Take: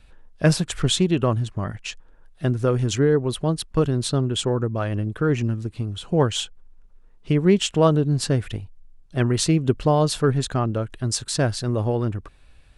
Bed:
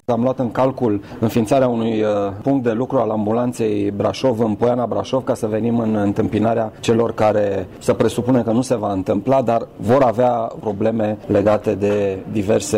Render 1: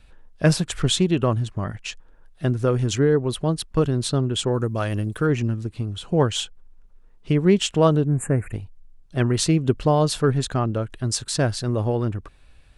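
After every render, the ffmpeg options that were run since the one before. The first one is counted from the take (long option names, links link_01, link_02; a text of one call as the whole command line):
ffmpeg -i in.wav -filter_complex "[0:a]asettb=1/sr,asplit=3[link_01][link_02][link_03];[link_01]atrim=end=4.544[link_04];[link_02]atrim=start=4.54:end=5.27,asetpts=PTS-STARTPTS,afade=type=in:duration=0.004:curve=qsin,afade=type=out:start_time=0.726:duration=0.004:curve=qsin,aemphasis=mode=production:type=75kf[link_05];[link_03]atrim=start=5.266[link_06];[link_04][link_05]acrossfade=duration=0.004:curve1=hsin:curve2=qsin[link_07];[link_07][link_06]acrossfade=duration=0.004:curve1=qsin:curve2=hsin,asplit=3[link_08][link_09][link_10];[link_08]afade=type=out:start_time=8.04:duration=0.02[link_11];[link_09]asuperstop=centerf=4300:order=12:qfactor=0.9,afade=type=in:start_time=8.04:duration=0.02,afade=type=out:start_time=8.52:duration=0.02[link_12];[link_10]afade=type=in:start_time=8.52:duration=0.02[link_13];[link_11][link_12][link_13]amix=inputs=3:normalize=0" out.wav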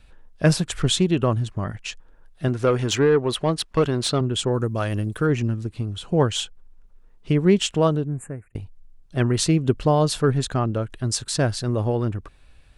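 ffmpeg -i in.wav -filter_complex "[0:a]asettb=1/sr,asplit=3[link_01][link_02][link_03];[link_01]atrim=end=2.484[link_04];[link_02]atrim=start=2.48:end=4.21,asetpts=PTS-STARTPTS,afade=type=in:duration=0.004:curve=qsin,afade=type=out:start_time=1.726:duration=0.004:curve=qsin,asplit=2[link_05][link_06];[link_06]highpass=frequency=720:poles=1,volume=13dB,asoftclip=type=tanh:threshold=-8dB[link_07];[link_05][link_07]amix=inputs=2:normalize=0,lowpass=frequency=3900:poles=1,volume=-6dB[link_08];[link_03]atrim=start=4.206[link_09];[link_04][link_08]acrossfade=duration=0.004:curve1=hsin:curve2=qsin[link_10];[link_10][link_09]acrossfade=duration=0.004:curve1=qsin:curve2=hsin,asplit=2[link_11][link_12];[link_11]atrim=end=8.55,asetpts=PTS-STARTPTS,afade=type=out:start_time=7.65:duration=0.9[link_13];[link_12]atrim=start=8.55,asetpts=PTS-STARTPTS,afade=type=in:duration=0.004:curve=hsin[link_14];[link_13][link_14]concat=n=2:v=0:a=1" out.wav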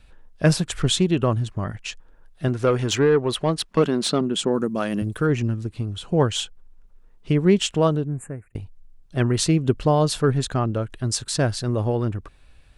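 ffmpeg -i in.wav -filter_complex "[0:a]asettb=1/sr,asplit=3[link_01][link_02][link_03];[link_01]atrim=end=3.694[link_04];[link_02]atrim=start=3.69:end=5.02,asetpts=PTS-STARTPTS,afade=type=in:duration=0.004:curve=qsin,afade=type=out:start_time=1.326:duration=0.004:curve=qsin,lowshelf=frequency=140:width_type=q:width=3:gain=-10[link_05];[link_03]atrim=start=5.016[link_06];[link_04][link_05]acrossfade=duration=0.004:curve1=hsin:curve2=qsin[link_07];[link_07][link_06]acrossfade=duration=0.004:curve1=qsin:curve2=hsin" out.wav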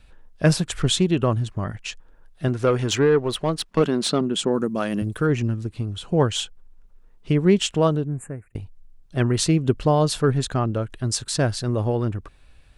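ffmpeg -i in.wav -filter_complex "[0:a]asettb=1/sr,asplit=3[link_01][link_02][link_03];[link_01]atrim=end=3.184[link_04];[link_02]atrim=start=3.18:end=3.81,asetpts=PTS-STARTPTS,afade=type=in:duration=0.004:curve=qsin,afade=type=out:start_time=0.626:duration=0.004:curve=qsin,aeval=exprs='if(lt(val(0),0),0.708*val(0),val(0))':channel_layout=same[link_05];[link_03]atrim=start=3.806[link_06];[link_04][link_05]acrossfade=duration=0.004:curve1=hsin:curve2=qsin[link_07];[link_07][link_06]acrossfade=duration=0.004:curve1=qsin:curve2=hsin" out.wav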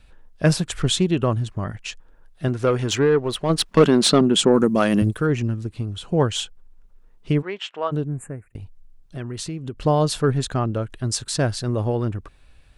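ffmpeg -i in.wav -filter_complex "[0:a]asplit=3[link_01][link_02][link_03];[link_01]afade=type=out:start_time=3.49:duration=0.02[link_04];[link_02]acontrast=74,afade=type=in:start_time=3.49:duration=0.02,afade=type=out:start_time=5.1:duration=0.02[link_05];[link_03]afade=type=in:start_time=5.1:duration=0.02[link_06];[link_04][link_05][link_06]amix=inputs=3:normalize=0,asplit=3[link_07][link_08][link_09];[link_07]afade=type=out:start_time=7.41:duration=0.02[link_10];[link_08]highpass=780,lowpass=2400,afade=type=in:start_time=7.41:duration=0.02,afade=type=out:start_time=7.91:duration=0.02[link_11];[link_09]afade=type=in:start_time=7.91:duration=0.02[link_12];[link_10][link_11][link_12]amix=inputs=3:normalize=0,asettb=1/sr,asplit=3[link_13][link_14][link_15];[link_13]atrim=end=8.514[link_16];[link_14]atrim=start=8.51:end=9.82,asetpts=PTS-STARTPTS,afade=type=in:duration=0.004:curve=qsin,afade=type=out:start_time=1.306:duration=0.004:curve=qsin,acompressor=threshold=-30dB:ratio=3:attack=3.2:release=140:knee=1:detection=peak[link_17];[link_15]atrim=start=9.816[link_18];[link_16][link_17]acrossfade=duration=0.004:curve1=hsin:curve2=qsin[link_19];[link_19][link_18]acrossfade=duration=0.004:curve1=qsin:curve2=hsin" out.wav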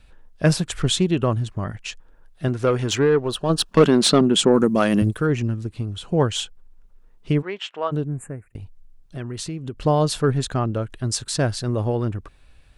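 ffmpeg -i in.wav -filter_complex "[0:a]asettb=1/sr,asplit=3[link_01][link_02][link_03];[link_01]atrim=end=3.274[link_04];[link_02]atrim=start=3.27:end=3.73,asetpts=PTS-STARTPTS,afade=type=in:duration=0.004:curve=qsin,afade=type=out:start_time=0.456:duration=0.004:curve=qsin,asuperstop=centerf=2100:order=4:qfactor=2.9[link_05];[link_03]atrim=start=3.726[link_06];[link_04][link_05]acrossfade=duration=0.004:curve1=hsin:curve2=qsin[link_07];[link_07][link_06]acrossfade=duration=0.004:curve1=qsin:curve2=hsin" out.wav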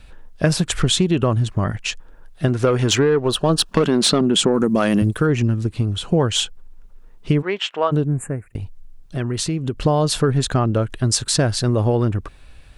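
ffmpeg -i in.wav -filter_complex "[0:a]asplit=2[link_01][link_02];[link_02]alimiter=limit=-12dB:level=0:latency=1:release=21,volume=3dB[link_03];[link_01][link_03]amix=inputs=2:normalize=0,acompressor=threshold=-13dB:ratio=6" out.wav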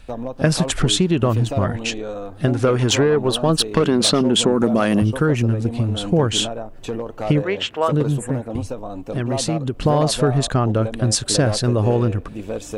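ffmpeg -i in.wav -i bed.wav -filter_complex "[1:a]volume=-11.5dB[link_01];[0:a][link_01]amix=inputs=2:normalize=0" out.wav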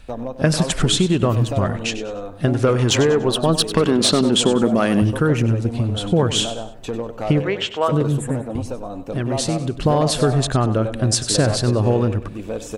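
ffmpeg -i in.wav -af "aecho=1:1:97|194|291:0.224|0.0784|0.0274" out.wav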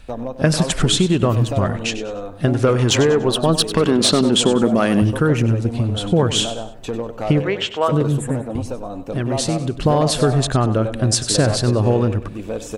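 ffmpeg -i in.wav -af "volume=1dB,alimiter=limit=-3dB:level=0:latency=1" out.wav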